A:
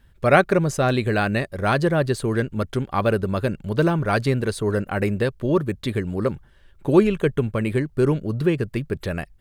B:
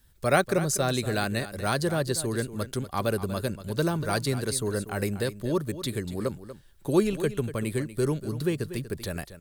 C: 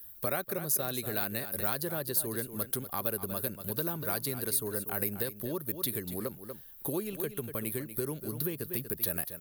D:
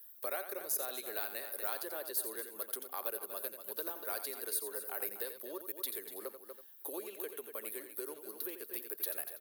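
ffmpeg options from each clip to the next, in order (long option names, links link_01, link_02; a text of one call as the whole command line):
ffmpeg -i in.wav -filter_complex "[0:a]acrossover=split=330|1100|2800[link_01][link_02][link_03][link_04];[link_04]aexciter=amount=3.8:drive=5.7:freq=3600[link_05];[link_01][link_02][link_03][link_05]amix=inputs=4:normalize=0,acrusher=bits=10:mix=0:aa=0.000001,aecho=1:1:240:0.224,volume=-7dB" out.wav
ffmpeg -i in.wav -af "lowshelf=frequency=99:gain=-10.5,acompressor=threshold=-35dB:ratio=3,aexciter=amount=10.8:drive=6.7:freq=11000" out.wav
ffmpeg -i in.wav -filter_complex "[0:a]highpass=frequency=380:width=0.5412,highpass=frequency=380:width=1.3066,asplit=2[link_01][link_02];[link_02]aecho=0:1:87:0.335[link_03];[link_01][link_03]amix=inputs=2:normalize=0,volume=-6dB" out.wav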